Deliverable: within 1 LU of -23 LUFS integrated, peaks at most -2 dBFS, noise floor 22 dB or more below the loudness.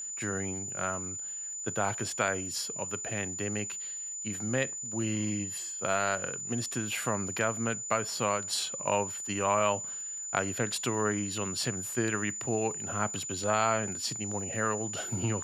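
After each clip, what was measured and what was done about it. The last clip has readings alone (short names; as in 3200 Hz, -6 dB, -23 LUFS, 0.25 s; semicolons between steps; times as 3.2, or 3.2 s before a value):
ticks 37/s; steady tone 7000 Hz; tone level -36 dBFS; loudness -31.0 LUFS; peak -10.5 dBFS; loudness target -23.0 LUFS
-> de-click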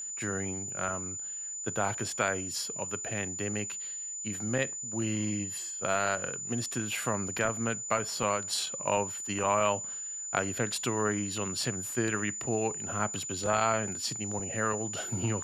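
ticks 0.26/s; steady tone 7000 Hz; tone level -36 dBFS
-> notch 7000 Hz, Q 30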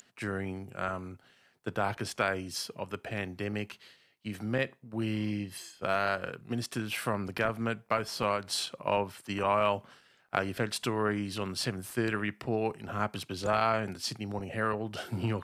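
steady tone none; loudness -33.0 LUFS; peak -10.5 dBFS; loudness target -23.0 LUFS
-> gain +10 dB; limiter -2 dBFS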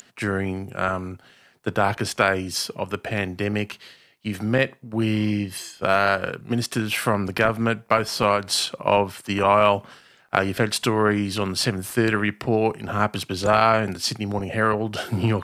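loudness -23.0 LUFS; peak -2.0 dBFS; noise floor -55 dBFS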